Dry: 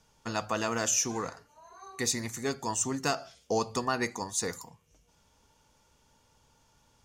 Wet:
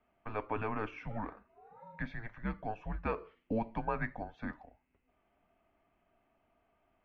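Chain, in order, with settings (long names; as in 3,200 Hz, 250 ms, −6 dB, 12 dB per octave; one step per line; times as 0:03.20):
single-sideband voice off tune −220 Hz 180–2,700 Hz
level −4.5 dB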